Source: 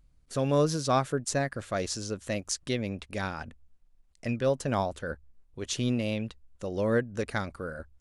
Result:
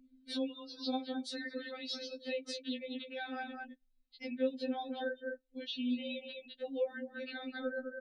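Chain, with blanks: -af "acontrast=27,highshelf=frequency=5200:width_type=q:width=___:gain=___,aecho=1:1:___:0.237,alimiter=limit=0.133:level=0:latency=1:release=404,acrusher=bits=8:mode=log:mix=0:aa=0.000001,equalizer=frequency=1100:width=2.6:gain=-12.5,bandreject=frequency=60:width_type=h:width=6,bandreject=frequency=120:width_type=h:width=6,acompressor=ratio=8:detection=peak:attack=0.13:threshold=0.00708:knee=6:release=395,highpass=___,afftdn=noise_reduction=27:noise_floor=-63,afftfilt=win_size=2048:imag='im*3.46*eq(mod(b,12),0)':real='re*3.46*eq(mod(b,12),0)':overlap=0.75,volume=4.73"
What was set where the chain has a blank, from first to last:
3, -10, 208, 78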